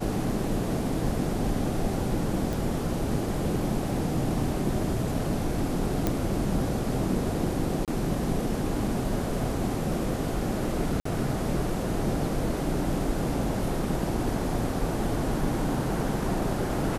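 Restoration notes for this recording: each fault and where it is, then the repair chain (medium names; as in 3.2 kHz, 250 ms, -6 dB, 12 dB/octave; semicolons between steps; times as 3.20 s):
2.53 s: pop
6.07 s: pop -11 dBFS
7.85–7.88 s: dropout 27 ms
11.00–11.05 s: dropout 54 ms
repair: de-click; interpolate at 7.85 s, 27 ms; interpolate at 11.00 s, 54 ms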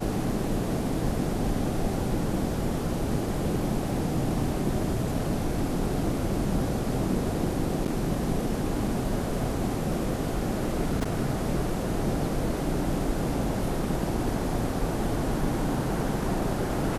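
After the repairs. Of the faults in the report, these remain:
nothing left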